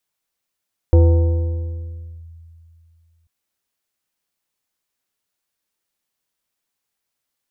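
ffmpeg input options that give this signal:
ffmpeg -f lavfi -i "aevalsrc='0.501*pow(10,-3*t/2.66)*sin(2*PI*82.7*t+0.52*clip(1-t/1.34,0,1)*sin(2*PI*5.07*82.7*t))':duration=2.34:sample_rate=44100" out.wav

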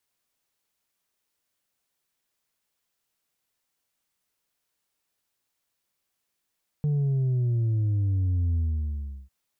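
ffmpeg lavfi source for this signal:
ffmpeg -f lavfi -i "aevalsrc='0.0794*clip((2.45-t)/0.73,0,1)*tanh(1.41*sin(2*PI*150*2.45/log(65/150)*(exp(log(65/150)*t/2.45)-1)))/tanh(1.41)':duration=2.45:sample_rate=44100" out.wav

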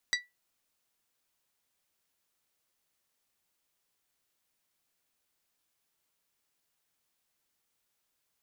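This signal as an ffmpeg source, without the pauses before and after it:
ffmpeg -f lavfi -i "aevalsrc='0.0668*pow(10,-3*t/0.2)*sin(2*PI*1960*t)+0.0501*pow(10,-3*t/0.123)*sin(2*PI*3920*t)+0.0376*pow(10,-3*t/0.108)*sin(2*PI*4704*t)+0.0282*pow(10,-3*t/0.093)*sin(2*PI*5880*t)+0.0211*pow(10,-3*t/0.076)*sin(2*PI*7840*t)':duration=0.89:sample_rate=44100" out.wav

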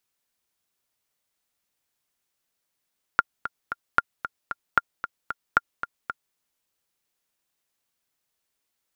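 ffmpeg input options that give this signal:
ffmpeg -f lavfi -i "aevalsrc='pow(10,(-3.5-12*gte(mod(t,3*60/227),60/227))/20)*sin(2*PI*1400*mod(t,60/227))*exp(-6.91*mod(t,60/227)/0.03)':duration=3.17:sample_rate=44100" out.wav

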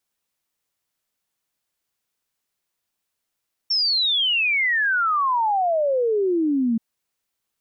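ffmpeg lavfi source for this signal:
ffmpeg -f lavfi -i "aevalsrc='0.133*clip(min(t,3.08-t)/0.01,0,1)*sin(2*PI*5500*3.08/log(220/5500)*(exp(log(220/5500)*t/3.08)-1))':duration=3.08:sample_rate=44100" out.wav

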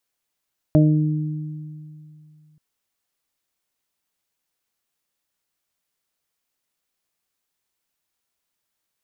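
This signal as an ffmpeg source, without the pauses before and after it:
ffmpeg -f lavfi -i "aevalsrc='0.251*pow(10,-3*t/2.66)*sin(2*PI*153*t)+0.2*pow(10,-3*t/1.74)*sin(2*PI*306*t)+0.0376*pow(10,-3*t/0.9)*sin(2*PI*459*t)+0.141*pow(10,-3*t/0.38)*sin(2*PI*612*t)':duration=1.83:sample_rate=44100" out.wav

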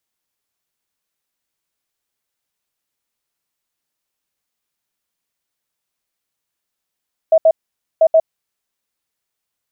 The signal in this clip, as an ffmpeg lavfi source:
ffmpeg -f lavfi -i "aevalsrc='0.473*sin(2*PI*645*t)*clip(min(mod(mod(t,0.69),0.13),0.06-mod(mod(t,0.69),0.13))/0.005,0,1)*lt(mod(t,0.69),0.26)':duration=1.38:sample_rate=44100" out.wav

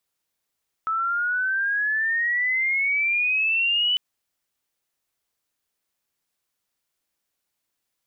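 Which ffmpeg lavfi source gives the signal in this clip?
ffmpeg -f lavfi -i "aevalsrc='pow(10,(-21.5+3*t/3.1)/20)*sin(2*PI*1300*3.1/log(3000/1300)*(exp(log(3000/1300)*t/3.1)-1))':duration=3.1:sample_rate=44100" out.wav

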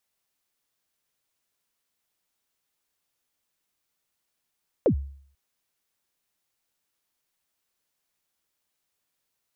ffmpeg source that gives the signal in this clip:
ffmpeg -f lavfi -i "aevalsrc='0.2*pow(10,-3*t/0.57)*sin(2*PI*(600*0.089/log(69/600)*(exp(log(69/600)*min(t,0.089)/0.089)-1)+69*max(t-0.089,0)))':duration=0.49:sample_rate=44100" out.wav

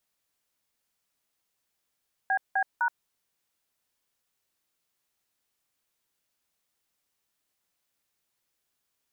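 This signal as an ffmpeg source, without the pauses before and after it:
ffmpeg -f lavfi -i "aevalsrc='0.0562*clip(min(mod(t,0.254),0.074-mod(t,0.254))/0.002,0,1)*(eq(floor(t/0.254),0)*(sin(2*PI*770*mod(t,0.254))+sin(2*PI*1633*mod(t,0.254)))+eq(floor(t/0.254),1)*(sin(2*PI*770*mod(t,0.254))+sin(2*PI*1633*mod(t,0.254)))+eq(floor(t/0.254),2)*(sin(2*PI*941*mod(t,0.254))+sin(2*PI*1477*mod(t,0.254))))':duration=0.762:sample_rate=44100" out.wav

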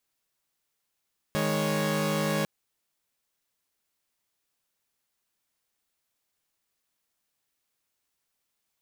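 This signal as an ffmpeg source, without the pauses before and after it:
ffmpeg -f lavfi -i "aevalsrc='0.0447*((2*mod(155.56*t,1)-1)+(2*mod(207.65*t,1)-1)+(2*mod(554.37*t,1)-1))':duration=1.1:sample_rate=44100" out.wav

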